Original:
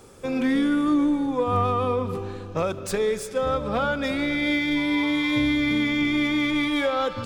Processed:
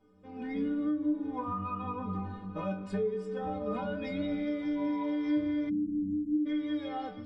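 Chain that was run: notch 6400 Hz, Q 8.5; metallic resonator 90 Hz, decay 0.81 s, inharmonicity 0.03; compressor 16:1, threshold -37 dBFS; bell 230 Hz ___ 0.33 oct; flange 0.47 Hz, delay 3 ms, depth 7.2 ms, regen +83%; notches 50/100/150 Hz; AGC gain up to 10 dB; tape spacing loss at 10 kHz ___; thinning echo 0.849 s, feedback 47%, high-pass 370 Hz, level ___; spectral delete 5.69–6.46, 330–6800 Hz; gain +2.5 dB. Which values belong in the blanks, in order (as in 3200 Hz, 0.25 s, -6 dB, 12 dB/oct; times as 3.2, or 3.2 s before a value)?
+14.5 dB, 28 dB, -18.5 dB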